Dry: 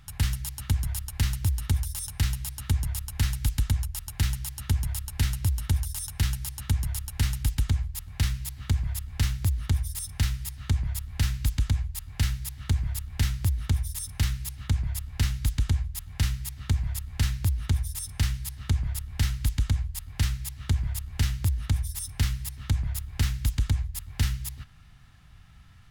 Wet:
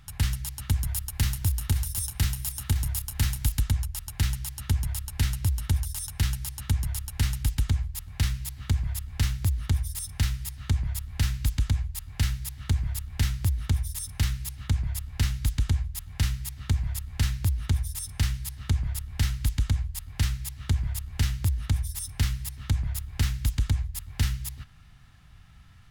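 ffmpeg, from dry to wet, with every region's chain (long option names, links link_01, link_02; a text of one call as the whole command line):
ffmpeg -i in.wav -filter_complex "[0:a]asettb=1/sr,asplit=3[link_01][link_02][link_03];[link_01]atrim=end=0.704[link_04];[link_02]atrim=start=0.7:end=3.61,asetpts=PTS-STARTPTS,afade=type=in:duration=0.004:curve=qsin,afade=type=out:start_time=2.906:duration=0.004:curve=qsin,highshelf=frequency=10000:gain=7,aecho=1:1:528:0.266,atrim=end_sample=128331[link_05];[link_03]atrim=start=3.606[link_06];[link_04][link_05]acrossfade=duration=0.004:curve1=hsin:curve2=qsin[link_07];[link_07][link_06]acrossfade=duration=0.004:curve1=qsin:curve2=hsin" out.wav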